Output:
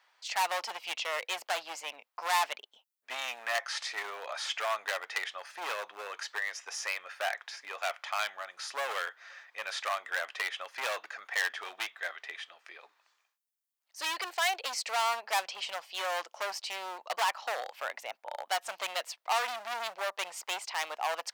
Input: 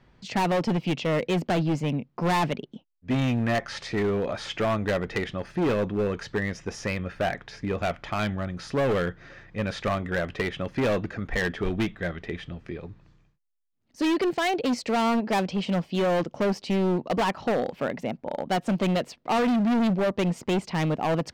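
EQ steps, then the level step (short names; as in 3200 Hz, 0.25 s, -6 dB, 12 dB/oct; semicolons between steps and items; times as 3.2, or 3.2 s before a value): HPF 770 Hz 24 dB/oct; high shelf 6300 Hz +11 dB; -2.0 dB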